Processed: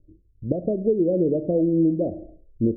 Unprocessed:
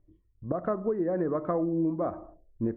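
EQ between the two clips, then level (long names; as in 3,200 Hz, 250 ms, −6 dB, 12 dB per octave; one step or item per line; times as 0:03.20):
Butterworth low-pass 580 Hz 48 dB per octave
+8.0 dB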